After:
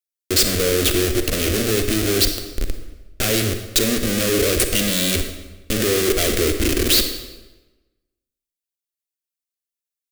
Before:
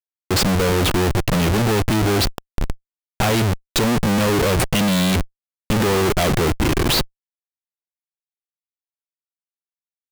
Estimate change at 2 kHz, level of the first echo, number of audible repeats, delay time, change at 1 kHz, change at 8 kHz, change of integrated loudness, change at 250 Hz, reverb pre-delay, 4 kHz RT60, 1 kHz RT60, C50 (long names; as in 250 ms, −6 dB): −1.0 dB, no echo audible, no echo audible, no echo audible, −10.0 dB, +6.0 dB, +0.5 dB, −3.0 dB, 37 ms, 0.90 s, 1.1 s, 7.5 dB